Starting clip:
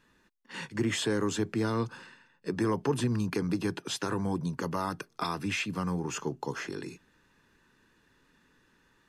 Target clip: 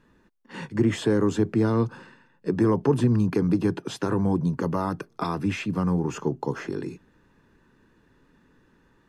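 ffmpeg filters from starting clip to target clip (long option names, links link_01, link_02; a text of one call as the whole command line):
ffmpeg -i in.wav -af "tiltshelf=frequency=1300:gain=6.5,volume=2dB" out.wav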